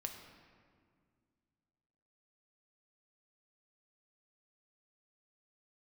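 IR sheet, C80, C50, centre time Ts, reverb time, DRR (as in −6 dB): 7.0 dB, 6.0 dB, 40 ms, 2.0 s, 3.5 dB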